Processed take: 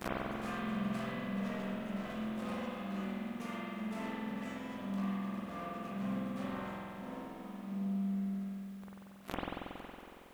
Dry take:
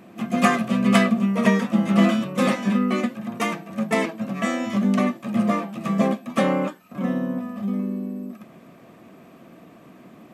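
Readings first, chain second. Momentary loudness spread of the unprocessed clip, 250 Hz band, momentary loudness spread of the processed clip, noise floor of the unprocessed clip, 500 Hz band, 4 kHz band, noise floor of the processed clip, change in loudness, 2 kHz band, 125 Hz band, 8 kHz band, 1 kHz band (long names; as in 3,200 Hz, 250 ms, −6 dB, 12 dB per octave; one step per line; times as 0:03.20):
10 LU, −16.5 dB, 9 LU, −48 dBFS, −17.5 dB, −16.5 dB, −53 dBFS, −17.5 dB, −17.0 dB, −15.0 dB, below −20 dB, −16.0 dB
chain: peak hold with a decay on every bin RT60 0.42 s
high-pass filter 64 Hz 12 dB per octave
notch filter 2,200 Hz, Q 8.7
leveller curve on the samples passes 5
gate with flip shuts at −22 dBFS, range −41 dB
bit-depth reduction 12 bits, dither triangular
spring reverb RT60 2.6 s, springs 46 ms, chirp 80 ms, DRR −7.5 dB
level +1.5 dB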